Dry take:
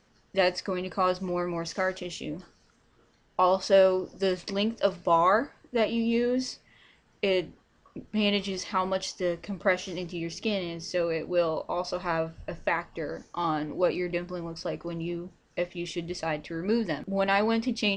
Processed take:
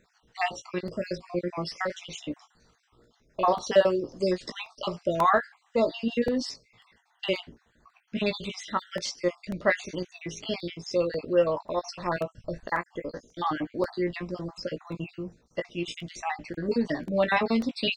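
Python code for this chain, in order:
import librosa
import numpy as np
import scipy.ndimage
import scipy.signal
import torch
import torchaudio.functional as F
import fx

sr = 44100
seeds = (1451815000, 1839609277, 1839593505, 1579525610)

y = fx.spec_dropout(x, sr, seeds[0], share_pct=50)
y = fx.doubler(y, sr, ms=17.0, db=-8)
y = fx.buffer_crackle(y, sr, first_s=0.34, period_s=0.54, block=64, kind='repeat')
y = F.gain(torch.from_numpy(y), 1.5).numpy()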